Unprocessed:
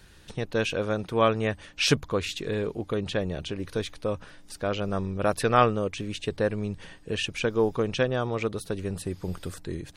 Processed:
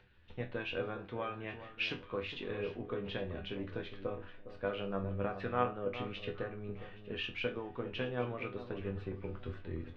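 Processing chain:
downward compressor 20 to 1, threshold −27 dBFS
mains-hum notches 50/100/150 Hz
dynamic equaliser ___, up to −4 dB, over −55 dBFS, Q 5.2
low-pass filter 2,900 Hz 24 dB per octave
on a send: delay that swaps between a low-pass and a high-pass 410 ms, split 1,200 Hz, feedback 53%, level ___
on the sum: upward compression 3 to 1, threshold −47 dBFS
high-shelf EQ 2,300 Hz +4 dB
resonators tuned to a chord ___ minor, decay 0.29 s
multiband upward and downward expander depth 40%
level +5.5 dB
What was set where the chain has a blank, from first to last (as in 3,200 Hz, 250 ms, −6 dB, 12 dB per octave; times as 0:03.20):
160 Hz, −9 dB, E2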